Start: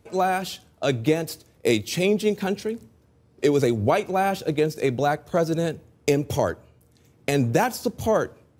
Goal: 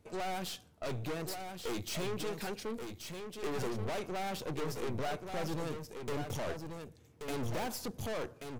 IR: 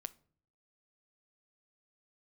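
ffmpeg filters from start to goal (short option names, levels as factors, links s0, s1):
-filter_complex "[0:a]asettb=1/sr,asplit=3[s0][s1][s2];[s0]atrim=end=2.074[s3];[s1]atrim=start=2.07:end=2.62,asetpts=PTS-STARTPTS,afade=t=in:d=0.004:c=qsin,afade=t=out:st=0.546:d=0.004:c=qsin,highpass=f=380:p=1[s4];[s2]atrim=start=2.616[s5];[s3][s4]acrossfade=d=0.004:c1=hsin:c2=qsin[s6];[s6][s5]acrossfade=d=0.004:c1=qsin:c2=hsin,aeval=exprs='(tanh(39.8*val(0)+0.65)-tanh(0.65))/39.8':c=same,aecho=1:1:1131:0.473,volume=0.668"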